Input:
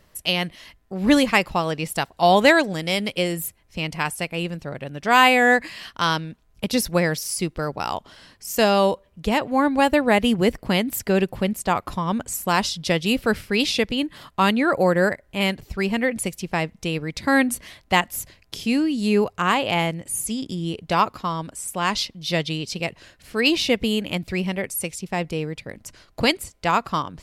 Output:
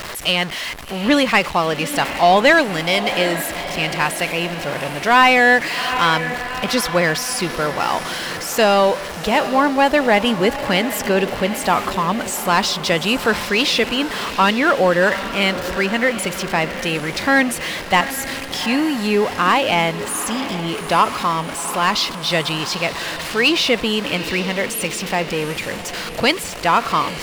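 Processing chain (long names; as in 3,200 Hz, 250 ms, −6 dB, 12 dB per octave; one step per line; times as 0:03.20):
converter with a step at zero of −26.5 dBFS
feedback delay with all-pass diffusion 785 ms, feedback 59%, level −13 dB
mid-hump overdrive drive 12 dB, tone 3,500 Hz, clips at −2.5 dBFS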